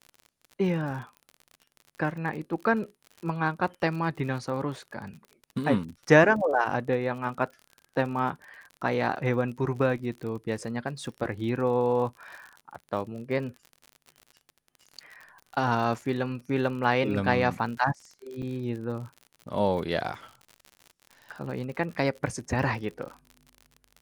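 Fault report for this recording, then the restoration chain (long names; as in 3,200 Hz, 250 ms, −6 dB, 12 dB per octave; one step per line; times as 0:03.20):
surface crackle 56 per second −37 dBFS
0:18.42–0:18.43: drop-out 6 ms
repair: click removal
repair the gap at 0:18.42, 6 ms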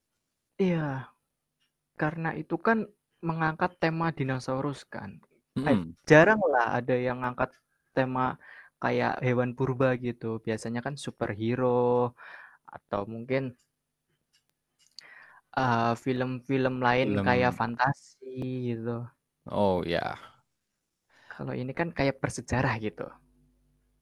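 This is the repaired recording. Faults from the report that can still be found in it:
none of them is left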